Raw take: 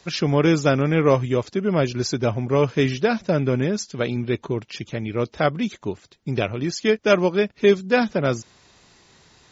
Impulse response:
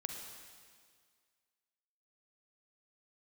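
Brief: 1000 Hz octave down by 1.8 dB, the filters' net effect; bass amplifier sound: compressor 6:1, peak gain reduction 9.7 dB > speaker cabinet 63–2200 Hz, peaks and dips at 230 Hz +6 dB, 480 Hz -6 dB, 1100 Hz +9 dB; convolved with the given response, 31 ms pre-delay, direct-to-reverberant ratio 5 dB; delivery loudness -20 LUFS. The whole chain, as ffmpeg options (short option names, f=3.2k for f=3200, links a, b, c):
-filter_complex "[0:a]equalizer=f=1k:t=o:g=-7.5,asplit=2[a][b];[1:a]atrim=start_sample=2205,adelay=31[c];[b][c]afir=irnorm=-1:irlink=0,volume=-4.5dB[d];[a][d]amix=inputs=2:normalize=0,acompressor=threshold=-22dB:ratio=6,highpass=f=63:w=0.5412,highpass=f=63:w=1.3066,equalizer=f=230:t=q:w=4:g=6,equalizer=f=480:t=q:w=4:g=-6,equalizer=f=1.1k:t=q:w=4:g=9,lowpass=f=2.2k:w=0.5412,lowpass=f=2.2k:w=1.3066,volume=7dB"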